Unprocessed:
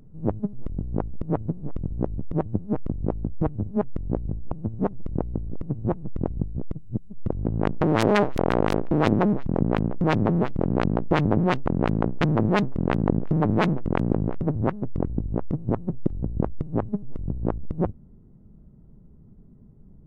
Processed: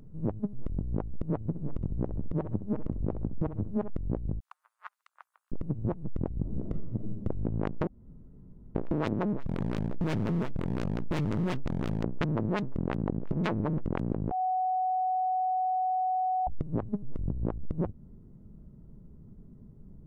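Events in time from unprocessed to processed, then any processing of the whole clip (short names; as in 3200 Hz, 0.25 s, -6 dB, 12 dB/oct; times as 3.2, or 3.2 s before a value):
1.45–3.9 feedback echo 65 ms, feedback 29%, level -12.5 dB
4.4–5.52 steep high-pass 1200 Hz
6.4–7.14 reverb throw, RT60 1.2 s, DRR 3 dB
7.87–8.75 room tone
9.4–12.03 hard clip -21 dBFS
13.32–13.78 reverse
14.31–16.47 bleep 744 Hz -15.5 dBFS
whole clip: notch 760 Hz, Q 12; compressor 4:1, threshold -27 dBFS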